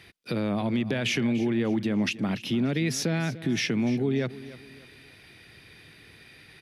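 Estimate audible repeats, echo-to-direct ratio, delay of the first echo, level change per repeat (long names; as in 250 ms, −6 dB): 3, −16.0 dB, 293 ms, −9.0 dB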